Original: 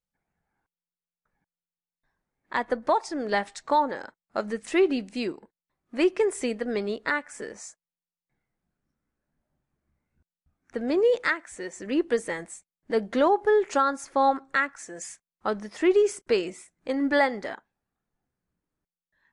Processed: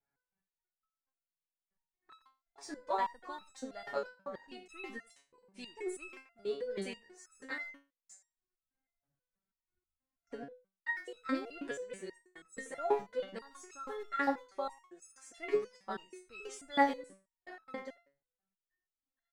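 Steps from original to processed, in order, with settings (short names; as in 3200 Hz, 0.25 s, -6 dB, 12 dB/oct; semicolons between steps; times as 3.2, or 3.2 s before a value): slices in reverse order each 0.213 s, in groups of 3; speakerphone echo 90 ms, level -10 dB; in parallel at -10 dB: crossover distortion -42.5 dBFS; on the sum: stepped resonator 6.2 Hz 140–1300 Hz; gain +1 dB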